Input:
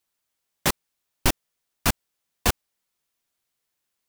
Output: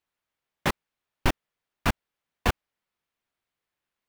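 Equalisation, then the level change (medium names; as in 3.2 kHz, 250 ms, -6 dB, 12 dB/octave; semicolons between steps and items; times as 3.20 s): tone controls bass +2 dB, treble -14 dB; bass shelf 460 Hz -3 dB; 0.0 dB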